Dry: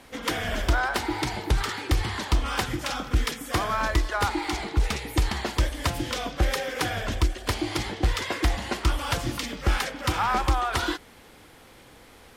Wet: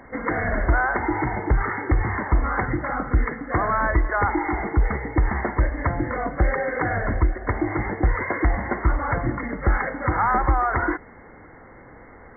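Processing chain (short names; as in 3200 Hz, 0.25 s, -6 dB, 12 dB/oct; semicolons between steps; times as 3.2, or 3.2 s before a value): in parallel at +0.5 dB: limiter -20.5 dBFS, peak gain reduction 8 dB; on the sum: brick-wall FIR low-pass 2200 Hz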